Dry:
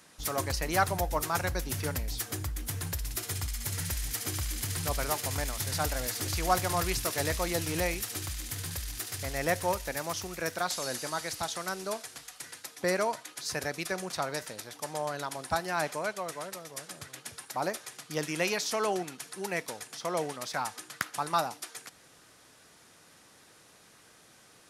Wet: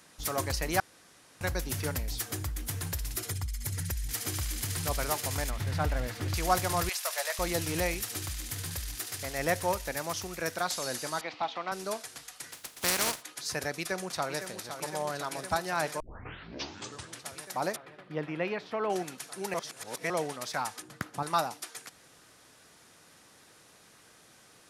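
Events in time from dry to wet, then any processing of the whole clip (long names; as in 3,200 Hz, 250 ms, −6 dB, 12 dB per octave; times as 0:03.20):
0:00.80–0:01.41: fill with room tone
0:03.17–0:04.09: spectral envelope exaggerated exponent 1.5
0:05.50–0:06.34: bass and treble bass +5 dB, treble −14 dB
0:06.89–0:07.39: elliptic high-pass filter 580 Hz, stop band 80 dB
0:08.95–0:09.39: low-shelf EQ 110 Hz −9 dB
0:11.21–0:11.72: loudspeaker in its box 240–3,600 Hz, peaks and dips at 280 Hz +5 dB, 410 Hz −4 dB, 780 Hz +6 dB, 1,100 Hz +4 dB, 1,600 Hz −6 dB, 2,400 Hz +4 dB
0:12.51–0:13.21: compressing power law on the bin magnitudes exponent 0.3
0:13.71–0:14.65: delay throw 510 ms, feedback 85%, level −9.5 dB
0:16.00: tape start 1.25 s
0:17.76–0:18.90: high-frequency loss of the air 470 metres
0:19.54–0:20.10: reverse
0:20.82–0:21.23: tilt shelving filter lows +9 dB, about 700 Hz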